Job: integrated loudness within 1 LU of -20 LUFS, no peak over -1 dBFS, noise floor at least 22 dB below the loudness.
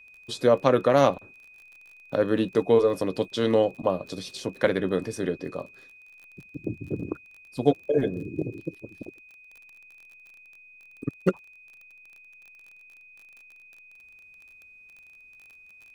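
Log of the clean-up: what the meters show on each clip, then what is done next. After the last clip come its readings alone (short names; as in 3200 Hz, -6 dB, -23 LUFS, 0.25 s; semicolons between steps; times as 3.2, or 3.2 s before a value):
ticks 29/s; steady tone 2500 Hz; tone level -49 dBFS; loudness -26.0 LUFS; peak -5.0 dBFS; loudness target -20.0 LUFS
-> de-click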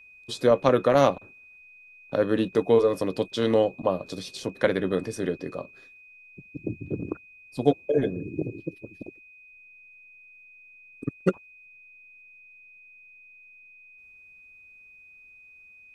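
ticks 0/s; steady tone 2500 Hz; tone level -49 dBFS
-> notch 2500 Hz, Q 30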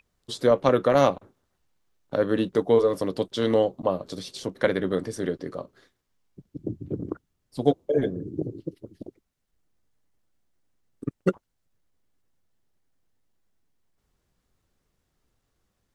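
steady tone none; loudness -25.5 LUFS; peak -5.0 dBFS; loudness target -20.0 LUFS
-> gain +5.5 dB; limiter -1 dBFS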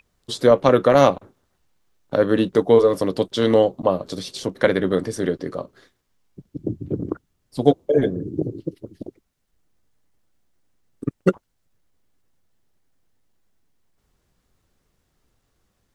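loudness -20.0 LUFS; peak -1.0 dBFS; noise floor -71 dBFS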